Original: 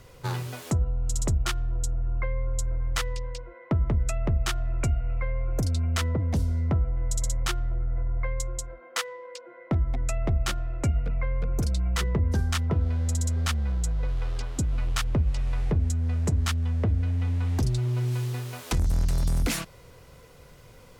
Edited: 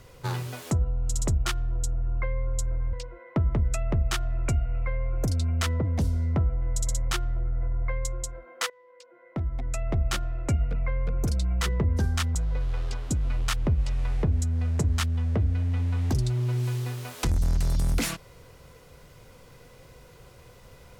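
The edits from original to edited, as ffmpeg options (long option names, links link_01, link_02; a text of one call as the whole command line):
ffmpeg -i in.wav -filter_complex "[0:a]asplit=4[link_01][link_02][link_03][link_04];[link_01]atrim=end=2.932[link_05];[link_02]atrim=start=3.278:end=9.05,asetpts=PTS-STARTPTS,afade=type=out:start_time=5.768:duration=0.004:curve=hsin:silence=0.112202[link_06];[link_03]atrim=start=9.05:end=12.702,asetpts=PTS-STARTPTS,afade=type=in:duration=1.4:silence=0.112202[link_07];[link_04]atrim=start=13.828[link_08];[link_06][link_07]concat=n=2:v=0:a=1[link_09];[link_05][link_09]acrossfade=duration=0.004:curve1=hsin:curve2=hsin[link_10];[link_10][link_08]acrossfade=duration=0.004:curve1=hsin:curve2=hsin" out.wav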